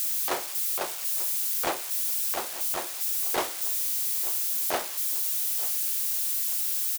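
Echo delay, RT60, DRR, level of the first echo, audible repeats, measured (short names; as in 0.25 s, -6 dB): 0.889 s, none, none, -17.5 dB, 2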